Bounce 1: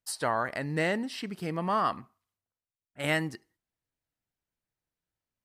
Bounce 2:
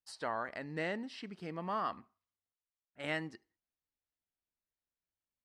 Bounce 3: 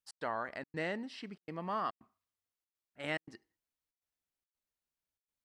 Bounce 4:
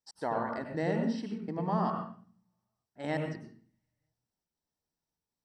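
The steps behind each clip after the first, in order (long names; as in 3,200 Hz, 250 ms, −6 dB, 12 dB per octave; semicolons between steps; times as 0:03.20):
low-pass filter 5,600 Hz 12 dB per octave; parametric band 130 Hz −9.5 dB 0.37 octaves; level −8.5 dB
gate pattern "x.xxxx.xxxxx" 142 BPM −60 dB
convolution reverb RT60 0.45 s, pre-delay 88 ms, DRR 3 dB; level −5.5 dB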